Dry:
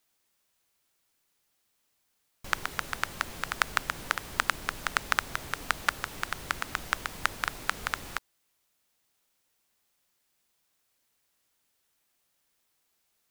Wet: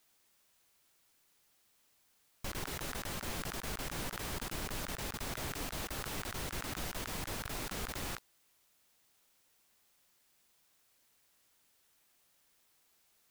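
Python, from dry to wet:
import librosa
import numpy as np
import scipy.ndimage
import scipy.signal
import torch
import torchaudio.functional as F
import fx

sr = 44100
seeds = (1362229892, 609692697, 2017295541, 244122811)

y = fx.over_compress(x, sr, threshold_db=-40.0, ratio=-1.0)
y = y * 10.0 ** (-1.5 / 20.0)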